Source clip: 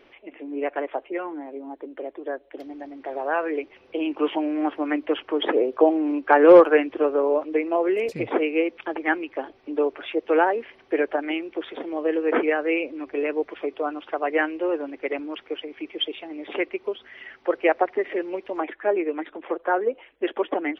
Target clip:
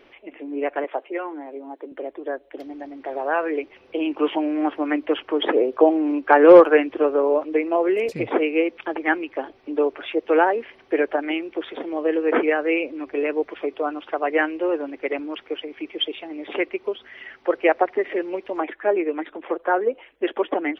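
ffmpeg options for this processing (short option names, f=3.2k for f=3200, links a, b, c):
-filter_complex "[0:a]asettb=1/sr,asplit=3[a][b][c];[a]atrim=end=0.844[d];[b]atrim=start=0.84:end=1.92,asetpts=PTS-STARTPTS,afade=t=in:d=0.004:c=qsin,afade=t=out:st=1.076:d=0.004:c=qsin,highpass=290[e];[c]atrim=start=1.916[f];[d][e]acrossfade=d=0.004:c1=hsin:c2=qsin[g];[g][f]acrossfade=d=0.004:c1=qsin:c2=hsin,volume=2dB"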